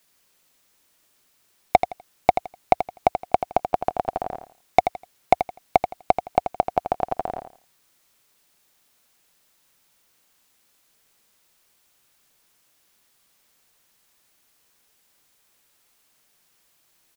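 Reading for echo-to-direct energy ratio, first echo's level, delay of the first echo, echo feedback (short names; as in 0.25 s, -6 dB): -9.0 dB, -9.0 dB, 83 ms, 23%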